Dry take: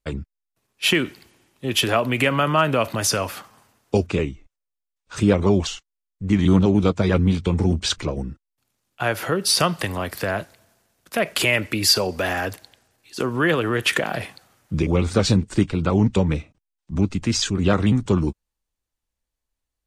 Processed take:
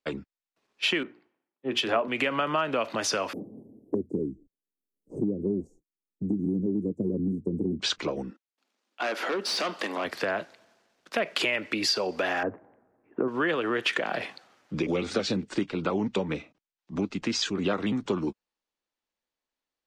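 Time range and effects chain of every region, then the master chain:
1.03–2.08 high shelf 2700 Hz -9 dB + notches 60/120/180/240/300/360/420/480 Hz + three-band expander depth 100%
3.33–7.8 inverse Chebyshev band-stop 1400–3600 Hz, stop band 80 dB + three-band squash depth 70%
8.3–10.05 brick-wall FIR high-pass 190 Hz + overloaded stage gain 23 dB
12.43–13.28 Gaussian blur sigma 6.4 samples + low shelf 470 Hz +8 dB
14.88–15.5 bell 1000 Hz -6.5 dB 0.45 oct + three-band squash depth 40%
whole clip: three-band isolator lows -23 dB, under 200 Hz, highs -21 dB, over 6100 Hz; compressor 3:1, threshold -25 dBFS

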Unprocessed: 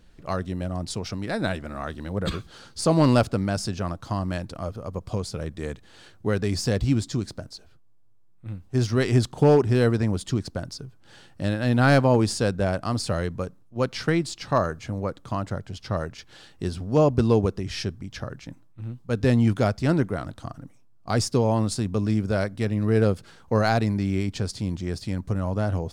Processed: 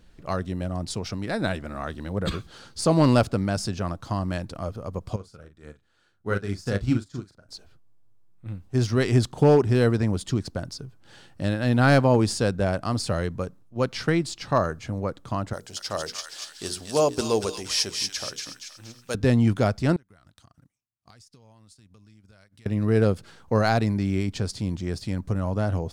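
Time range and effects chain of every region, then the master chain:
5.16–7.49 bell 1400 Hz +9.5 dB 0.35 oct + doubler 40 ms -6.5 dB + upward expander 2.5:1, over -31 dBFS
15.53–19.15 tone controls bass -13 dB, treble +15 dB + notches 60/120/180/240/300/360/420/480 Hz + thin delay 0.236 s, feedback 43%, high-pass 1600 Hz, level -3.5 dB
19.96–22.66 passive tone stack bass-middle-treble 5-5-5 + compressor, threshold -52 dBFS + transient shaper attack +4 dB, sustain -10 dB
whole clip: dry

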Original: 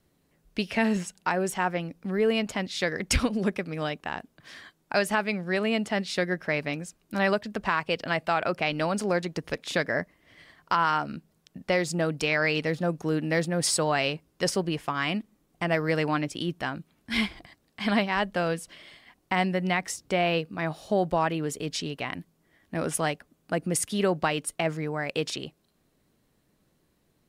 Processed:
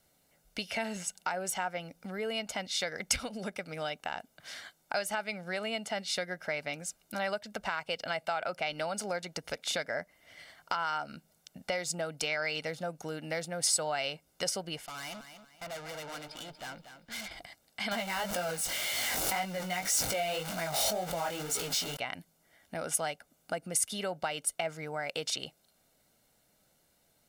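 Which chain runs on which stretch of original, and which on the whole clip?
14.86–17.31 rippled Chebyshev low-pass 5000 Hz, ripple 3 dB + tube stage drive 40 dB, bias 0.55 + lo-fi delay 0.237 s, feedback 35%, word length 12-bit, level -10 dB
17.91–21.97 zero-crossing step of -26.5 dBFS + chorus 1.9 Hz, delay 16.5 ms, depth 5.7 ms + backwards sustainer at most 24 dB/s
whole clip: comb 1.4 ms, depth 53%; compressor 2.5:1, threshold -34 dBFS; tone controls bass -10 dB, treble +6 dB

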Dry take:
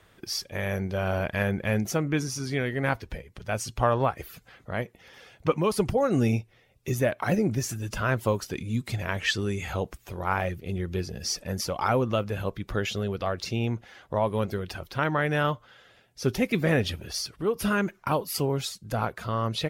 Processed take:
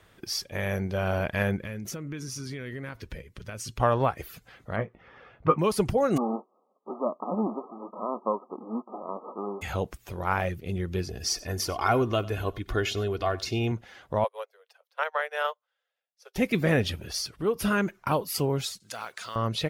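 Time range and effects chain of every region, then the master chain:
1.56–3.8 compressor 8:1, threshold -32 dBFS + bell 760 Hz -9.5 dB 0.48 oct
4.76–5.59 LPF 1800 Hz + bell 1200 Hz +8.5 dB 0.3 oct + doubler 18 ms -8 dB
6.16–9.61 spectral whitening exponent 0.3 + brick-wall FIR band-pass 190–1300 Hz
11.08–13.72 comb 2.8 ms, depth 58% + echo 94 ms -20 dB
14.24–16.36 steep high-pass 450 Hz 96 dB/oct + upward expander 2.5:1, over -43 dBFS
18.8–19.36 weighting filter ITU-R 468 + compressor 2:1, threshold -38 dBFS + modulation noise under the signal 26 dB
whole clip: dry

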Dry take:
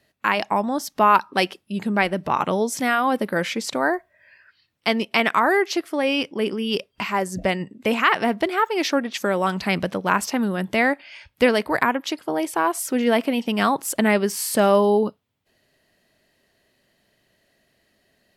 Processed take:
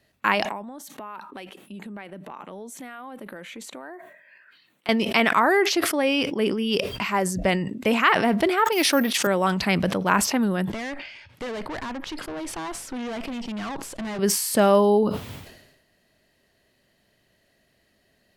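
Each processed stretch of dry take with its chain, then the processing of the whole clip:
0.45–4.89 HPF 180 Hz 24 dB/oct + bell 5100 Hz -14 dB 0.32 oct + compressor 4:1, threshold -38 dBFS
8.72–9.27 high shelf 2500 Hz +7.5 dB + careless resampling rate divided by 3×, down none, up zero stuff + BPF 130–7000 Hz
10.7–14.19 HPF 95 Hz 24 dB/oct + tube stage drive 29 dB, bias 0.4 + air absorption 53 m
whole clip: low shelf 130 Hz +4.5 dB; sustainer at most 57 dB/s; gain -1 dB

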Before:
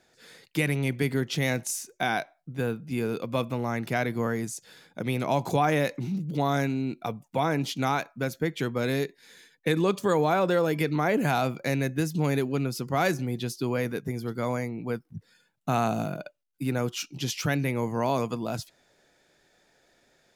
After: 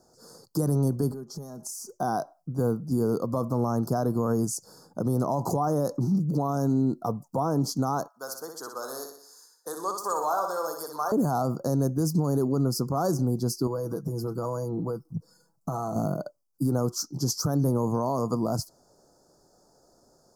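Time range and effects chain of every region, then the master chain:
1.11–1.91 compressor 10:1, threshold -40 dBFS + comb 4.9 ms, depth 61%
8.08–11.12 HPF 1100 Hz + flutter echo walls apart 10.5 m, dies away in 0.61 s
13.67–15.96 comb 6.1 ms, depth 58% + compressor 12:1, threshold -31 dBFS
whole clip: Chebyshev band-stop 1200–4800 Hz, order 3; bell 3700 Hz -10 dB 0.27 oct; limiter -22.5 dBFS; gain +6 dB

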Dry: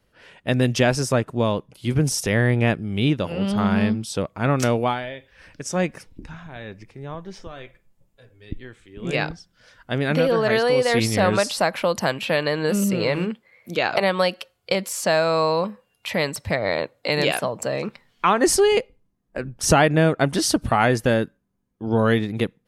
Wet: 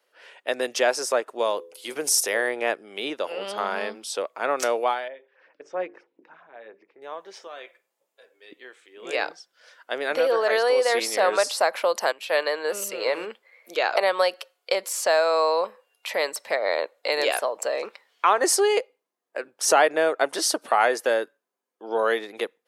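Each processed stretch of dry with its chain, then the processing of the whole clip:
1.38–2.49 high shelf 6800 Hz +10 dB + de-hum 84.45 Hz, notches 6
5.08–7.02 notches 50/100/150/200/250/300/350/400/450 Hz + LFO notch sine 7.5 Hz 640–4200 Hz + tape spacing loss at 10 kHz 43 dB
12.12–13.06 low shelf 340 Hz -3.5 dB + three-band expander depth 70%
whole clip: HPF 430 Hz 24 dB/oct; dynamic EQ 2800 Hz, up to -4 dB, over -36 dBFS, Q 1.4

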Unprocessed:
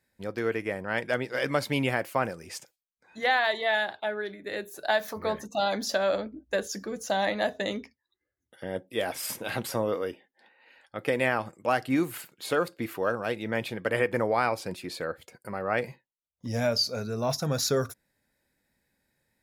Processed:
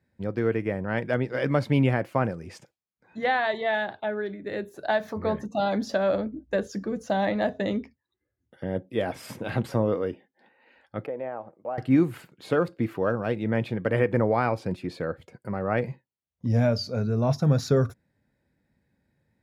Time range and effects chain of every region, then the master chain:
11.06–11.78 band-pass 650 Hz, Q 1.8 + compressor 1.5:1, threshold -39 dBFS
whole clip: HPF 100 Hz 12 dB/oct; RIAA curve playback

